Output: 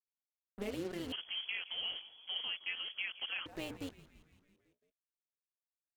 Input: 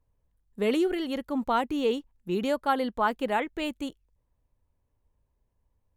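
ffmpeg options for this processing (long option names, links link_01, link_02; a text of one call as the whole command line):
ffmpeg -i in.wav -filter_complex "[0:a]bandreject=frequency=60:width_type=h:width=6,bandreject=frequency=120:width_type=h:width=6,bandreject=frequency=180:width_type=h:width=6,bandreject=frequency=240:width_type=h:width=6,bandreject=frequency=300:width_type=h:width=6,bandreject=frequency=360:width_type=h:width=6,bandreject=frequency=420:width_type=h:width=6,acompressor=threshold=-29dB:ratio=5,tremolo=f=180:d=0.75,acrusher=bits=6:mix=0:aa=0.5,asplit=7[link_01][link_02][link_03][link_04][link_05][link_06][link_07];[link_02]adelay=168,afreqshift=-120,volume=-17dB[link_08];[link_03]adelay=336,afreqshift=-240,volume=-21.2dB[link_09];[link_04]adelay=504,afreqshift=-360,volume=-25.3dB[link_10];[link_05]adelay=672,afreqshift=-480,volume=-29.5dB[link_11];[link_06]adelay=840,afreqshift=-600,volume=-33.6dB[link_12];[link_07]adelay=1008,afreqshift=-720,volume=-37.8dB[link_13];[link_01][link_08][link_09][link_10][link_11][link_12][link_13]amix=inputs=7:normalize=0,asettb=1/sr,asplit=3[link_14][link_15][link_16];[link_14]atrim=end=1.124[link_17];[link_15]atrim=start=1.12:end=3.46,asetpts=PTS-STARTPTS,afade=type=in:duration=0.004:curve=qsin,afade=type=out:start_time=2.336:duration=0.004:curve=qsin,lowpass=frequency=2900:width_type=q:width=0.5098,lowpass=frequency=2900:width_type=q:width=0.6013,lowpass=frequency=2900:width_type=q:width=0.9,lowpass=frequency=2900:width_type=q:width=2.563,afreqshift=-3400[link_18];[link_16]atrim=start=3.456[link_19];[link_17][link_18]acrossfade=duration=0.004:curve1=hsin:curve2=qsin[link_20];[link_20][link_19]acrossfade=duration=0.004:curve1=qsin:curve2=hsin,volume=-5dB" out.wav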